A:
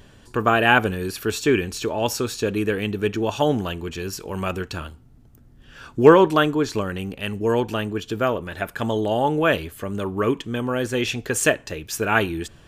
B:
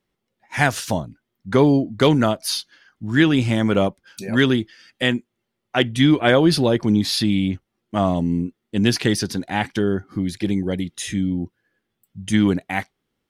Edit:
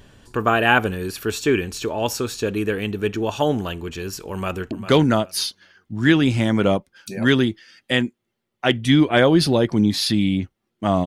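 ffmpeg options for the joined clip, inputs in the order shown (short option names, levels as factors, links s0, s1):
-filter_complex "[0:a]apad=whole_dur=11.06,atrim=end=11.06,atrim=end=4.712[s0];[1:a]atrim=start=1.818:end=8.17[s1];[s0][s1]acrossfade=d=0.004:c1=hsin:c2=hsin,asplit=2[s2][s3];[s3]afade=t=in:st=4.32:d=0.01,afade=t=out:st=4.71:d=0.01,aecho=0:1:400|800|1200:0.266073|0.0532145|0.0106429[s4];[s2][s4]amix=inputs=2:normalize=0"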